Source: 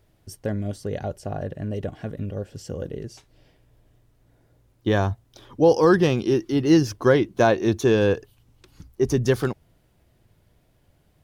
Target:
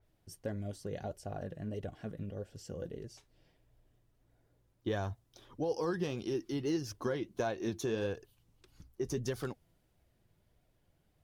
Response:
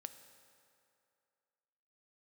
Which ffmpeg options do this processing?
-af "acompressor=threshold=0.1:ratio=6,flanger=delay=1.3:depth=4.8:regen=65:speed=1.6:shape=sinusoidal,adynamicequalizer=threshold=0.00398:dfrequency=3600:dqfactor=0.7:tfrequency=3600:tqfactor=0.7:attack=5:release=100:ratio=0.375:range=2:mode=boostabove:tftype=highshelf,volume=0.473"

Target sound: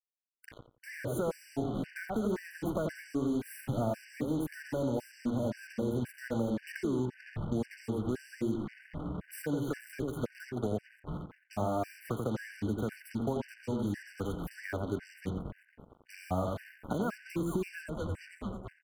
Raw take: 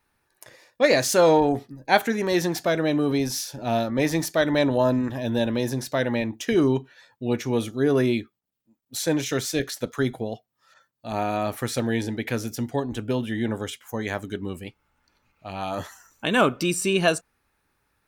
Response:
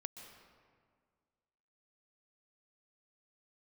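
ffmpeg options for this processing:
-filter_complex "[0:a]asuperstop=centerf=4900:order=4:qfactor=0.61,equalizer=f=77:t=o:w=1.1:g=7.5,asetrate=42336,aresample=44100,asplit=2[s0][s1];[s1]asplit=6[s2][s3][s4][s5][s6][s7];[s2]adelay=222,afreqshift=-140,volume=0.112[s8];[s3]adelay=444,afreqshift=-280,volume=0.0733[s9];[s4]adelay=666,afreqshift=-420,volume=0.0473[s10];[s5]adelay=888,afreqshift=-560,volume=0.0309[s11];[s6]adelay=1110,afreqshift=-700,volume=0.02[s12];[s7]adelay=1332,afreqshift=-840,volume=0.013[s13];[s8][s9][s10][s11][s12][s13]amix=inputs=6:normalize=0[s14];[s0][s14]amix=inputs=2:normalize=0,acrossover=split=90|240[s15][s16][s17];[s15]acompressor=threshold=0.00224:ratio=4[s18];[s16]acompressor=threshold=0.00794:ratio=4[s19];[s17]acompressor=threshold=0.0501:ratio=4[s20];[s18][s19][s20]amix=inputs=3:normalize=0,bass=f=250:g=7,treble=f=4000:g=-9,alimiter=limit=0.0891:level=0:latency=1:release=425,acrusher=bits=6:mix=0:aa=0.5,asplit=2[s21][s22];[s22]adelay=87,lowpass=f=1500:p=1,volume=0.631,asplit=2[s23][s24];[s24]adelay=87,lowpass=f=1500:p=1,volume=0.25,asplit=2[s25][s26];[s26]adelay=87,lowpass=f=1500:p=1,volume=0.25[s27];[s23][s25][s27]amix=inputs=3:normalize=0[s28];[s21][s28]amix=inputs=2:normalize=0,acompressor=threshold=0.0251:ratio=3,afftfilt=real='re*gt(sin(2*PI*1.9*pts/sr)*(1-2*mod(floor(b*sr/1024/1500),2)),0)':imag='im*gt(sin(2*PI*1.9*pts/sr)*(1-2*mod(floor(b*sr/1024/1500),2)),0)':win_size=1024:overlap=0.75,volume=1.41"

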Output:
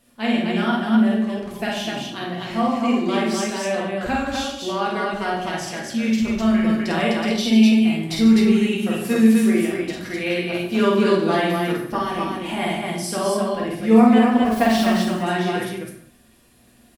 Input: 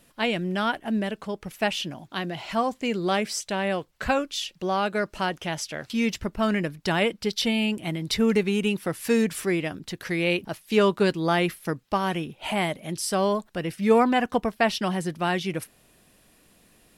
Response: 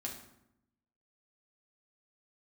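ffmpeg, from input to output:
-filter_complex "[0:a]asettb=1/sr,asplit=3[s0][s1][s2];[s0]atrim=end=14.454[s3];[s1]atrim=start=14.45:end=14.97,asetpts=PTS-STARTPTS,afade=t=in:d=0.004:c=qsin,afade=t=out:st=0.516:d=0.004:c=qsin,aeval=exprs='val(0)+0.5*0.0316*sgn(val(0))':c=same[s4];[s2]atrim=start=14.966[s5];[s3][s4]acrossfade=d=0.004:c1=hsin:c2=qsin[s6];[s6][s5]acrossfade=d=0.004:c1=qsin:c2=hsin,aecho=1:1:49.56|145.8|253.6:0.794|0.282|0.794[s7];[1:a]atrim=start_sample=2205,afade=t=out:st=0.31:d=0.01,atrim=end_sample=14112[s8];[s7][s8]afir=irnorm=-1:irlink=0"

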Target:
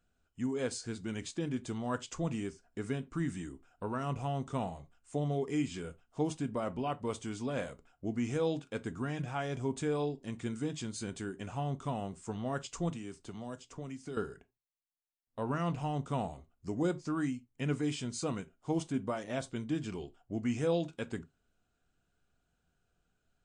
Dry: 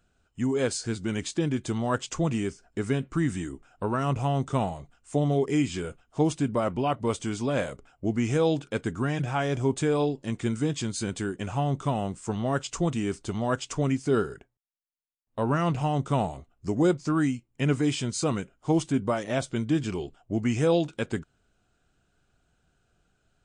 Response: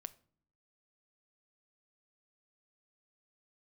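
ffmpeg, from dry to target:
-filter_complex "[0:a]asettb=1/sr,asplit=3[s0][s1][s2];[s0]atrim=end=12.894[s3];[s1]atrim=start=12.89:end=14.17,asetpts=PTS-STARTPTS,afade=t=in:d=0.004:c=qsin,afade=t=out:st=1.276:d=0.004:c=qsin,acrossover=split=86|750|3400[s4][s5][s6][s7];[s4]acompressor=threshold=0.00178:ratio=4[s8];[s5]acompressor=threshold=0.0224:ratio=4[s9];[s6]acompressor=threshold=0.00447:ratio=4[s10];[s7]acompressor=threshold=0.00398:ratio=4[s11];[s8][s9][s10][s11]amix=inputs=4:normalize=0[s12];[s2]atrim=start=14.166[s13];[s3][s12]acrossfade=d=0.004:c1=hsin:c2=qsin[s14];[s14][s13]acrossfade=d=0.004:c1=qsin:c2=hsin[s15];[1:a]atrim=start_sample=2205,afade=t=out:st=0.2:d=0.01,atrim=end_sample=9261,asetrate=70560,aresample=44100[s16];[s15][s16]afir=irnorm=-1:irlink=0"

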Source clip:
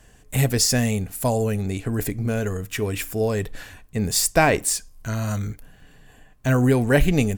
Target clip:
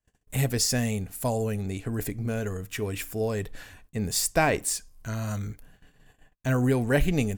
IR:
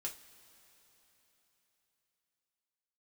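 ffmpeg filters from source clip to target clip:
-af "agate=range=0.0355:threshold=0.00398:ratio=16:detection=peak,volume=0.531"

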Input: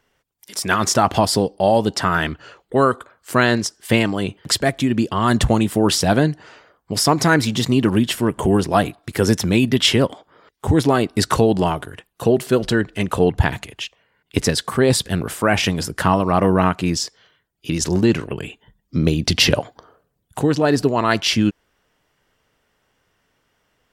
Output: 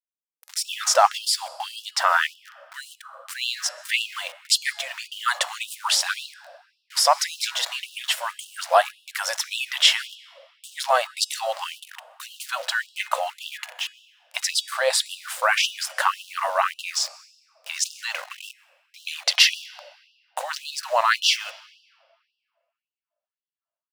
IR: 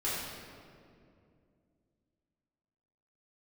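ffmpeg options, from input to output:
-filter_complex "[0:a]aeval=exprs='val(0)*gte(abs(val(0)),0.0237)':c=same,highshelf=f=8900:g=-5,bandreject=f=420.3:t=h:w=4,bandreject=f=840.6:t=h:w=4,bandreject=f=1260.9:t=h:w=4,bandreject=f=1681.2:t=h:w=4,bandreject=f=2101.5:t=h:w=4,bandreject=f=2521.8:t=h:w=4,bandreject=f=2942.1:t=h:w=4,bandreject=f=3362.4:t=h:w=4,bandreject=f=3782.7:t=h:w=4,bandreject=f=4203:t=h:w=4,bandreject=f=4623.3:t=h:w=4,bandreject=f=5043.6:t=h:w=4,bandreject=f=5463.9:t=h:w=4,bandreject=f=5884.2:t=h:w=4,bandreject=f=6304.5:t=h:w=4,bandreject=f=6724.8:t=h:w=4,bandreject=f=7145.1:t=h:w=4,bandreject=f=7565.4:t=h:w=4,bandreject=f=7985.7:t=h:w=4,bandreject=f=8406:t=h:w=4,bandreject=f=8826.3:t=h:w=4,bandreject=f=9246.6:t=h:w=4,bandreject=f=9666.9:t=h:w=4,bandreject=f=10087.2:t=h:w=4,bandreject=f=10507.5:t=h:w=4,bandreject=f=10927.8:t=h:w=4,bandreject=f=11348.1:t=h:w=4,bandreject=f=11768.4:t=h:w=4,bandreject=f=12188.7:t=h:w=4,bandreject=f=12609:t=h:w=4,bandreject=f=13029.3:t=h:w=4,bandreject=f=13449.6:t=h:w=4,bandreject=f=13869.9:t=h:w=4,bandreject=f=14290.2:t=h:w=4,asplit=2[s0][s1];[1:a]atrim=start_sample=2205,adelay=124[s2];[s1][s2]afir=irnorm=-1:irlink=0,volume=0.0398[s3];[s0][s3]amix=inputs=2:normalize=0,afftfilt=real='re*gte(b*sr/1024,480*pow(2700/480,0.5+0.5*sin(2*PI*1.8*pts/sr)))':imag='im*gte(b*sr/1024,480*pow(2700/480,0.5+0.5*sin(2*PI*1.8*pts/sr)))':win_size=1024:overlap=0.75,volume=1.12"

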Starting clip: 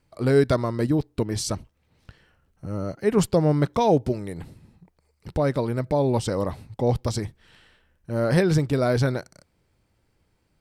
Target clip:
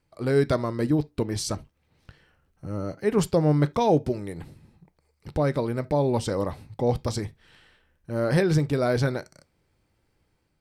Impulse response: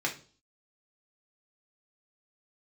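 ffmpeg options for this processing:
-filter_complex "[0:a]dynaudnorm=f=130:g=5:m=1.41,asplit=2[s0][s1];[1:a]atrim=start_sample=2205,afade=t=out:st=0.13:d=0.01,atrim=end_sample=6174[s2];[s1][s2]afir=irnorm=-1:irlink=0,volume=0.133[s3];[s0][s3]amix=inputs=2:normalize=0,volume=0.531"

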